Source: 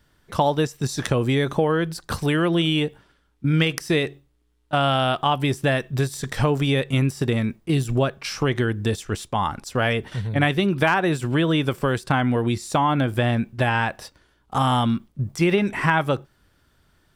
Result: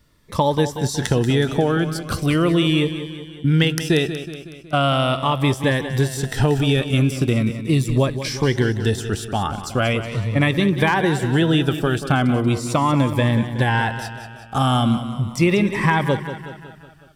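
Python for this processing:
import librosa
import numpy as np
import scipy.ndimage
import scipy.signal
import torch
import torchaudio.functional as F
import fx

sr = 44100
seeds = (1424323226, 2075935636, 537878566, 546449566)

p1 = x + fx.echo_feedback(x, sr, ms=185, feedback_pct=56, wet_db=-11, dry=0)
p2 = fx.notch_cascade(p1, sr, direction='falling', hz=0.39)
y = F.gain(torch.from_numpy(p2), 3.5).numpy()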